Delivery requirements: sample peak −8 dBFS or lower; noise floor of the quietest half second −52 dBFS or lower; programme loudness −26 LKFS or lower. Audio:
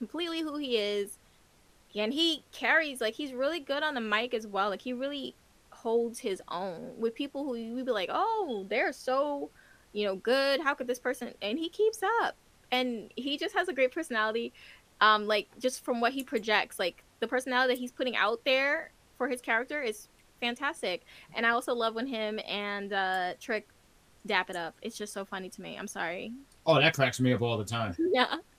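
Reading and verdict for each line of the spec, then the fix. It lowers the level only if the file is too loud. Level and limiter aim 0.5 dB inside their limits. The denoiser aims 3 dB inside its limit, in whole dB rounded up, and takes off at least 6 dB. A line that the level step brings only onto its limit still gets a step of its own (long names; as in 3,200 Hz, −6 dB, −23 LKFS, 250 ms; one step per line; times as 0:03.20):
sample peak −8.5 dBFS: in spec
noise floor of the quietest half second −62 dBFS: in spec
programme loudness −30.5 LKFS: in spec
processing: no processing needed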